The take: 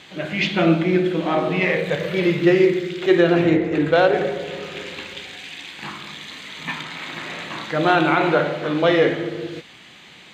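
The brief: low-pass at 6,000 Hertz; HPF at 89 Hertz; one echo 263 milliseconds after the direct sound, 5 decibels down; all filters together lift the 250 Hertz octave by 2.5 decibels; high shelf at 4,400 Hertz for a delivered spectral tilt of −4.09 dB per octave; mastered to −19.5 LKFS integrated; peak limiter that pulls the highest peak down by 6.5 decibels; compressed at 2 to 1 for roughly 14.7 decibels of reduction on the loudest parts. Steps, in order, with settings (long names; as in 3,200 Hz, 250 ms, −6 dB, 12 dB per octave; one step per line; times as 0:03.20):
high-pass filter 89 Hz
low-pass filter 6,000 Hz
parametric band 250 Hz +4.5 dB
high-shelf EQ 4,400 Hz −4.5 dB
downward compressor 2 to 1, threshold −37 dBFS
brickwall limiter −23 dBFS
single-tap delay 263 ms −5 dB
level +13 dB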